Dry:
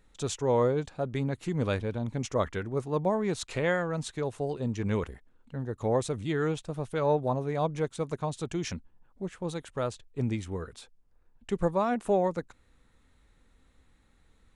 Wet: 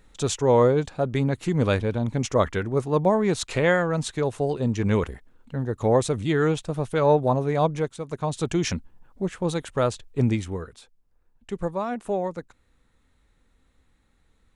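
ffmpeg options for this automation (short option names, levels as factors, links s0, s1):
-af "volume=7.5,afade=t=out:st=7.65:d=0.38:silence=0.354813,afade=t=in:st=8.03:d=0.42:silence=0.298538,afade=t=out:st=10.24:d=0.51:silence=0.334965"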